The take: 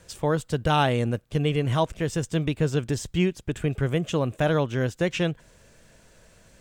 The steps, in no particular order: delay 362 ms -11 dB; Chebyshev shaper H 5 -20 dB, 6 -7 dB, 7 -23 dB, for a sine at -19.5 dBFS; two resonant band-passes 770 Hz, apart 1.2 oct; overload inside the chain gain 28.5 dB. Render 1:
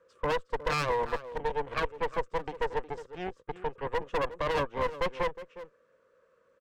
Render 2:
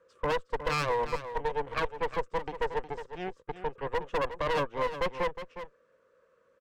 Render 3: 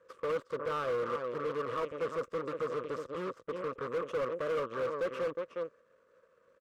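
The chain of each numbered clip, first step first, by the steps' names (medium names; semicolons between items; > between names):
two resonant band-passes > overload inside the chain > delay > Chebyshev shaper; two resonant band-passes > overload inside the chain > Chebyshev shaper > delay; delay > Chebyshev shaper > two resonant band-passes > overload inside the chain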